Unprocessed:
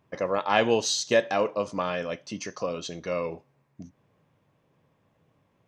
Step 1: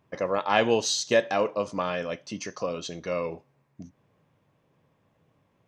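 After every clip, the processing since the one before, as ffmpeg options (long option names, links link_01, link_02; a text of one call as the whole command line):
ffmpeg -i in.wav -af anull out.wav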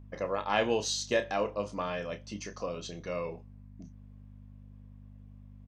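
ffmpeg -i in.wav -filter_complex "[0:a]aeval=exprs='val(0)+0.00794*(sin(2*PI*50*n/s)+sin(2*PI*2*50*n/s)/2+sin(2*PI*3*50*n/s)/3+sin(2*PI*4*50*n/s)/4+sin(2*PI*5*50*n/s)/5)':channel_layout=same,asplit=2[link_01][link_02];[link_02]adelay=29,volume=-9.5dB[link_03];[link_01][link_03]amix=inputs=2:normalize=0,volume=-6dB" out.wav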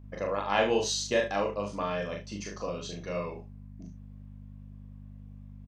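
ffmpeg -i in.wav -af "aecho=1:1:40|74:0.708|0.237" out.wav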